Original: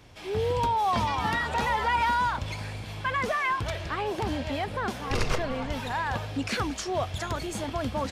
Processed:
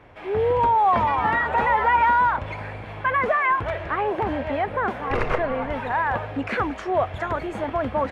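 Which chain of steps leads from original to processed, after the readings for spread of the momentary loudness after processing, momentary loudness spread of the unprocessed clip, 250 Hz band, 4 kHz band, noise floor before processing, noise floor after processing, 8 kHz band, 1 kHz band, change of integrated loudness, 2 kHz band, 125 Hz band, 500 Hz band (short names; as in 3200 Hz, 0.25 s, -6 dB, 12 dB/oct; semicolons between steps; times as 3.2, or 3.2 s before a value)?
9 LU, 7 LU, +3.0 dB, -6.0 dB, -39 dBFS, -36 dBFS, under -15 dB, +7.0 dB, +6.0 dB, +5.5 dB, 0.0 dB, +7.0 dB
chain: EQ curve 180 Hz 0 dB, 560 Hz +8 dB, 2000 Hz +6 dB, 5100 Hz -16 dB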